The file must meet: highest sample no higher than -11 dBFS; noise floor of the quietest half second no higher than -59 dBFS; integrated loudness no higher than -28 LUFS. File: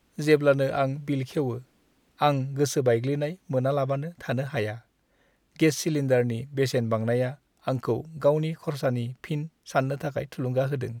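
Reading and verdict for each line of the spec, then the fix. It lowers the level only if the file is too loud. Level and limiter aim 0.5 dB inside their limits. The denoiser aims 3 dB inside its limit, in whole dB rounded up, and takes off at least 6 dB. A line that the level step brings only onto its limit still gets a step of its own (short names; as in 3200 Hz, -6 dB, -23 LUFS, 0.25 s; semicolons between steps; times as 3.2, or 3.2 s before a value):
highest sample -7.5 dBFS: fail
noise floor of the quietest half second -67 dBFS: OK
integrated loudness -26.5 LUFS: fail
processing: gain -2 dB; limiter -11.5 dBFS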